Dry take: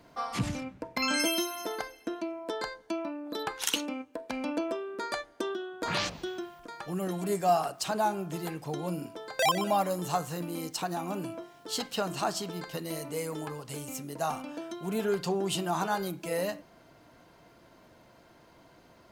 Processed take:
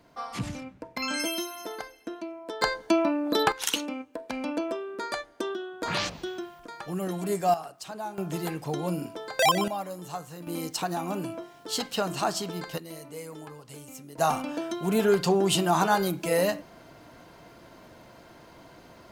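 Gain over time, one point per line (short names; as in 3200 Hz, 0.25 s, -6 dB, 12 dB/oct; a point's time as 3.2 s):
-2 dB
from 2.62 s +11 dB
from 3.52 s +1.5 dB
from 7.54 s -8 dB
from 8.18 s +4 dB
from 9.68 s -6.5 dB
from 10.47 s +3 dB
from 12.78 s -5.5 dB
from 14.18 s +7 dB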